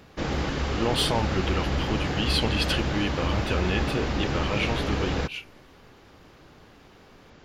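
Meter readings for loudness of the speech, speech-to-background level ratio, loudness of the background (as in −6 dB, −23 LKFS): −29.0 LKFS, −0.5 dB, −28.5 LKFS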